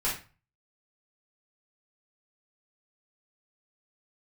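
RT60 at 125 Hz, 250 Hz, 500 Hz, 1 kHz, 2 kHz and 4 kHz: 0.55, 0.35, 0.30, 0.35, 0.35, 0.30 s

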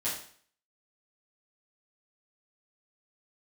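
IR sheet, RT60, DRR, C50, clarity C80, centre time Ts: 0.50 s, -10.5 dB, 4.5 dB, 8.5 dB, 40 ms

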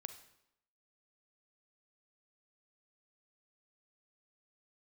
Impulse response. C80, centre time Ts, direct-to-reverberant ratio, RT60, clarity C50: 13.5 dB, 10 ms, 9.0 dB, 0.80 s, 10.5 dB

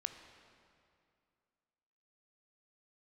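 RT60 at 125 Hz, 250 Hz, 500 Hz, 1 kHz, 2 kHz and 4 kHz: 2.5, 2.6, 2.4, 2.4, 2.1, 1.9 s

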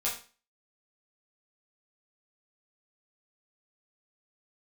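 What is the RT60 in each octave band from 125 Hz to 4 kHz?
0.35, 0.40, 0.35, 0.35, 0.35, 0.35 s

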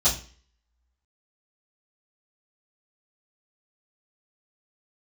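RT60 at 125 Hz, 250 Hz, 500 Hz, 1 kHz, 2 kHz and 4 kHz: 0.45, 0.45, 0.40, 0.40, 0.45, 0.40 s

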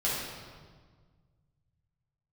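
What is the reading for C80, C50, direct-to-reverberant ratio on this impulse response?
1.5 dB, -1.0 dB, -8.5 dB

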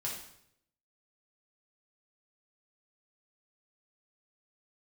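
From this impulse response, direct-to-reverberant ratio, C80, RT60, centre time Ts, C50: -4.5 dB, 7.5 dB, 0.75 s, 39 ms, 3.5 dB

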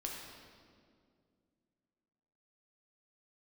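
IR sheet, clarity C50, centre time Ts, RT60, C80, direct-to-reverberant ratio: 1.0 dB, 85 ms, 2.2 s, 2.5 dB, -1.5 dB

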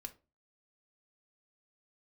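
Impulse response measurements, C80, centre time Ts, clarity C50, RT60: 25.0 dB, 5 ms, 17.0 dB, 0.30 s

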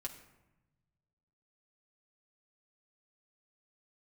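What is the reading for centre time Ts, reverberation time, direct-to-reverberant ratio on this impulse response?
16 ms, 1.0 s, -0.5 dB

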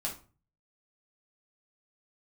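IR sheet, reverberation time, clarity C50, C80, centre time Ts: 0.35 s, 9.0 dB, 16.0 dB, 20 ms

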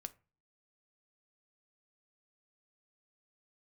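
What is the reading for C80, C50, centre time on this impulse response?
26.5 dB, 21.0 dB, 3 ms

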